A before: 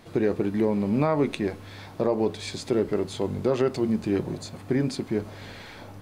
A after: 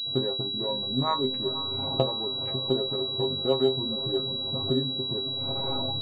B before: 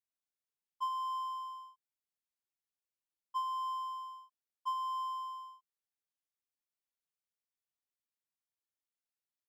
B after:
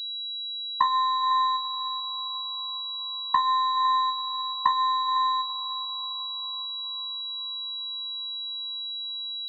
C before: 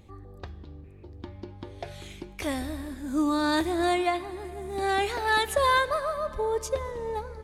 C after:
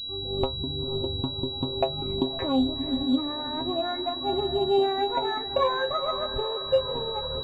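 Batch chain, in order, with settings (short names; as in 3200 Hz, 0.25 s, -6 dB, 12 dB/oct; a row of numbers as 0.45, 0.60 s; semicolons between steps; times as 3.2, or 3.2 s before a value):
Wiener smoothing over 25 samples; recorder AGC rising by 53 dB/s; treble ducked by the level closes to 1400 Hz, closed at -23 dBFS; reverb removal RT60 1.5 s; dynamic EQ 950 Hz, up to +5 dB, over -40 dBFS, Q 1.2; metallic resonator 130 Hz, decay 0.22 s, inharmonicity 0.002; on a send: diffused feedback echo 0.484 s, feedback 62%, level -12 dB; on the sum: pulse-width modulation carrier 3900 Hz; match loudness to -27 LUFS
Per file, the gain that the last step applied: +5.0, +17.0, +10.0 dB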